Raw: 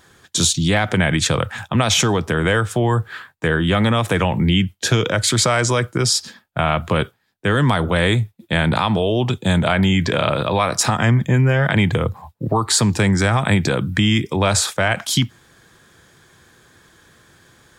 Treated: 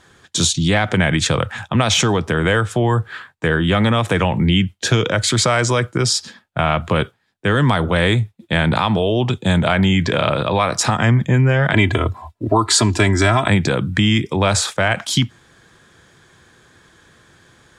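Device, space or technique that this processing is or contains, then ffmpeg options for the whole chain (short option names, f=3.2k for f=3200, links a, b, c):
exciter from parts: -filter_complex "[0:a]asplit=2[a][b];[b]highpass=f=3.1k:p=1,asoftclip=type=tanh:threshold=-19.5dB,highpass=f=4.1k:w=0.5412,highpass=f=4.1k:w=1.3066,volume=-13.5dB[c];[a][c]amix=inputs=2:normalize=0,asettb=1/sr,asplit=3[d][e][f];[d]atrim=end=11.734[g];[e]atrim=start=11.73:end=13.48,asetpts=PTS-STARTPTS,afade=t=in:d=0.004:c=qsin,afade=t=out:st=1.746:d=0.004:c=qsin,aecho=1:1:3:0.93,atrim=end_sample=77175[h];[f]atrim=start=13.476[i];[g][h]acrossfade=d=0.004:c1=hsin:c2=qsin[j];[j][i]acrossfade=d=0.004:c1=qsin:c2=hsin,lowpass=8.3k,volume=1dB"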